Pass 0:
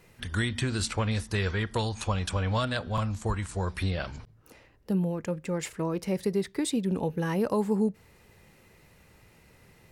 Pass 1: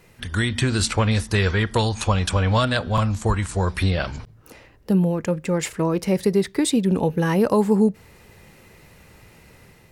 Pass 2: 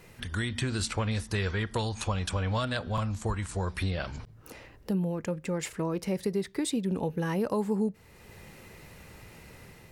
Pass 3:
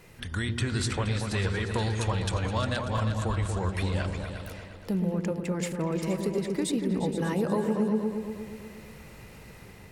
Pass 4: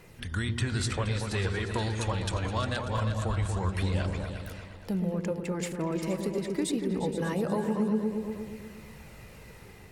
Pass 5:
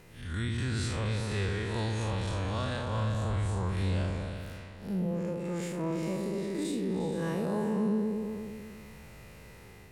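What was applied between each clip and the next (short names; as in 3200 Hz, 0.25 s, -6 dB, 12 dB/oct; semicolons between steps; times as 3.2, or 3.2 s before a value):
AGC gain up to 4 dB; gain +4.5 dB
compressor 1.5:1, threshold -45 dBFS, peak gain reduction 11.5 dB
repeats that get brighter 0.118 s, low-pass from 400 Hz, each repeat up 2 oct, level -3 dB
phaser 0.24 Hz, delay 3.6 ms, feedback 22%; gain -1.5 dB
time blur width 0.121 s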